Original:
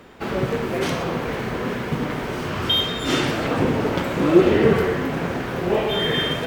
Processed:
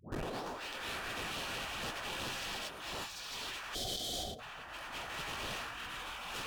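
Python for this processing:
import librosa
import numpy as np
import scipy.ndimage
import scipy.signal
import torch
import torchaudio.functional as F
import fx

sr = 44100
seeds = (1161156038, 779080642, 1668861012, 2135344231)

p1 = fx.tape_start_head(x, sr, length_s=1.41)
p2 = fx.spec_gate(p1, sr, threshold_db=-20, keep='weak')
p3 = fx.schmitt(p2, sr, flips_db=-41.0)
p4 = p2 + F.gain(torch.from_numpy(p3), -4.0).numpy()
p5 = fx.notch(p4, sr, hz=2100.0, q=8.0)
p6 = p5 + fx.echo_alternate(p5, sr, ms=225, hz=1500.0, feedback_pct=75, wet_db=-11, dry=0)
p7 = fx.spec_box(p6, sr, start_s=3.74, length_s=0.65, low_hz=790.0, high_hz=3000.0, gain_db=-28)
p8 = fx.over_compress(p7, sr, threshold_db=-39.0, ratio=-1.0)
p9 = np.interp(np.arange(len(p8)), np.arange(len(p8))[::2], p8[::2])
y = F.gain(torch.from_numpy(p9), -3.0).numpy()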